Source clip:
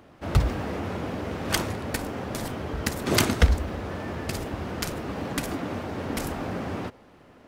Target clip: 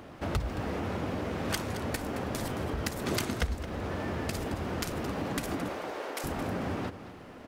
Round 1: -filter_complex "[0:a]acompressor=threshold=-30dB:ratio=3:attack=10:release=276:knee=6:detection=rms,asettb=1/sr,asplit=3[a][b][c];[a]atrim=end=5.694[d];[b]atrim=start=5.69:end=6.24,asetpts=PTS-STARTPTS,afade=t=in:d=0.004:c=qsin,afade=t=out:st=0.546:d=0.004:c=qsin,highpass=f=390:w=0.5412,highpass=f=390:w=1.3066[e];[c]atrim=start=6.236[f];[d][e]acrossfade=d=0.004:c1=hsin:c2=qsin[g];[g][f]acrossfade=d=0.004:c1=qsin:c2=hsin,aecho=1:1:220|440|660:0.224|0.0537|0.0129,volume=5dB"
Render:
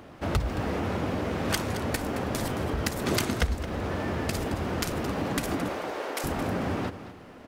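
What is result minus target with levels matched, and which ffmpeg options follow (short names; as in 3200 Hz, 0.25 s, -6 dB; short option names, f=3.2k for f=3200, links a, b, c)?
compressor: peak gain reduction -4.5 dB
-filter_complex "[0:a]acompressor=threshold=-36.5dB:ratio=3:attack=10:release=276:knee=6:detection=rms,asettb=1/sr,asplit=3[a][b][c];[a]atrim=end=5.694[d];[b]atrim=start=5.69:end=6.24,asetpts=PTS-STARTPTS,afade=t=in:d=0.004:c=qsin,afade=t=out:st=0.546:d=0.004:c=qsin,highpass=f=390:w=0.5412,highpass=f=390:w=1.3066[e];[c]atrim=start=6.236[f];[d][e]acrossfade=d=0.004:c1=hsin:c2=qsin[g];[g][f]acrossfade=d=0.004:c1=qsin:c2=hsin,aecho=1:1:220|440|660:0.224|0.0537|0.0129,volume=5dB"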